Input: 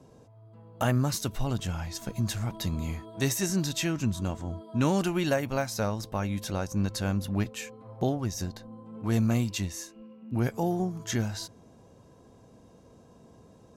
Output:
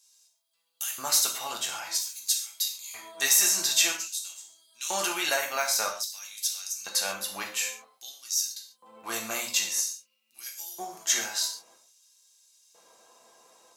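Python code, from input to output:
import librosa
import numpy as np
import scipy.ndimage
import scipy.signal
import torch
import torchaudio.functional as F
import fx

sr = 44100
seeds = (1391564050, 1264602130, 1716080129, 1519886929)

y = fx.filter_lfo_highpass(x, sr, shape='square', hz=0.51, low_hz=820.0, high_hz=4400.0, q=0.96)
y = fx.high_shelf(y, sr, hz=3500.0, db=11.5)
y = fx.rev_gated(y, sr, seeds[0], gate_ms=170, shape='falling', drr_db=-0.5)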